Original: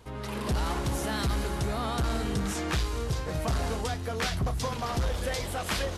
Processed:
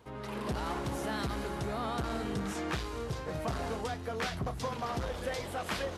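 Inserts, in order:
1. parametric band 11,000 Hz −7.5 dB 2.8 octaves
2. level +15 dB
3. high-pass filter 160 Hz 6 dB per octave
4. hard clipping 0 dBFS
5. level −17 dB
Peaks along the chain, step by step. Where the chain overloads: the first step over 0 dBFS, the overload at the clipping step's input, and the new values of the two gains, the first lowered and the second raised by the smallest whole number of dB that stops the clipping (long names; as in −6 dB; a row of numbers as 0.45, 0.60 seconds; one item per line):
−22.0, −7.0, −5.5, −5.5, −22.5 dBFS
no step passes full scale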